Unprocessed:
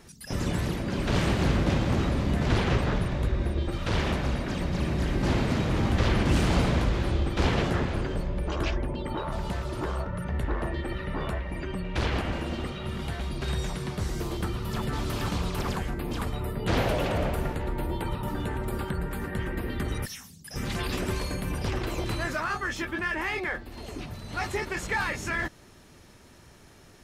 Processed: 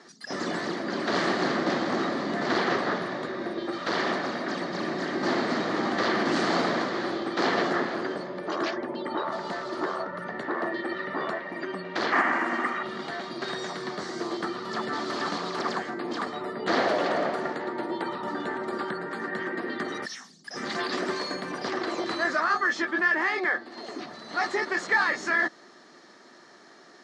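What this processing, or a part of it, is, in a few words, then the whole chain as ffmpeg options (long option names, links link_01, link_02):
television speaker: -filter_complex "[0:a]asettb=1/sr,asplit=3[link_01][link_02][link_03];[link_01]atrim=end=12.124[link_04];[link_02]atrim=start=12.12:end=12.83,asetpts=PTS-STARTPTS,afade=type=in:duration=0.004:curve=qsin,afade=type=out:start_time=0.706:duration=0.004:curve=qsin,equalizer=frequency=125:width_type=o:width=1:gain=-10,equalizer=frequency=250:width_type=o:width=1:gain=5,equalizer=frequency=500:width_type=o:width=1:gain=-5,equalizer=frequency=1000:width_type=o:width=1:gain=8,equalizer=frequency=2000:width_type=o:width=1:gain=11,equalizer=frequency=4000:width_type=o:width=1:gain=-12,equalizer=frequency=8000:width_type=o:width=1:gain=7[link_05];[link_03]atrim=start=12.826[link_06];[link_04][link_05]acrossfade=duration=0.004:curve1=hsin:curve2=qsin[link_07];[link_07][link_06]acrossfade=duration=0.004:curve1=qsin:curve2=hsin,highpass=frequency=220:width=0.5412,highpass=frequency=220:width=1.3066,equalizer=frequency=350:width_type=q:width=4:gain=4,equalizer=frequency=700:width_type=q:width=4:gain=6,equalizer=frequency=1200:width_type=q:width=4:gain=7,equalizer=frequency=1800:width_type=q:width=4:gain=8,equalizer=frequency=2600:width_type=q:width=4:gain=-7,equalizer=frequency=4400:width_type=q:width=4:gain=7,lowpass=frequency=6900:width=0.5412,lowpass=frequency=6900:width=1.3066"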